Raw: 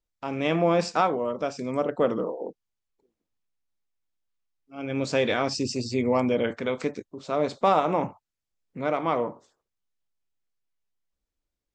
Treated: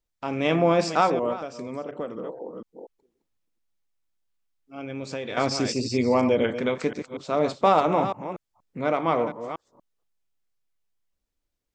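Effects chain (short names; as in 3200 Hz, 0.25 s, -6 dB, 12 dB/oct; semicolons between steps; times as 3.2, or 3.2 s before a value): reverse delay 0.239 s, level -10 dB; 1.33–5.37 compressor 3:1, threshold -35 dBFS, peak gain reduction 13.5 dB; gain +2 dB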